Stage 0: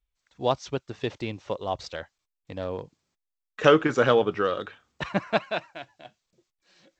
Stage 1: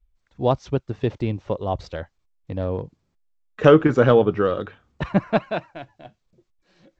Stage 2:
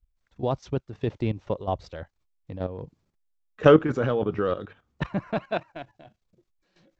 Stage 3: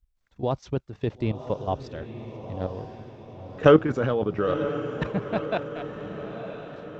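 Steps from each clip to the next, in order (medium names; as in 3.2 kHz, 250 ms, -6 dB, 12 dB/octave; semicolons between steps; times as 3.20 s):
tilt EQ -3 dB/octave; trim +2 dB
level held to a coarse grid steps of 12 dB
echo that smears into a reverb 985 ms, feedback 56%, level -10 dB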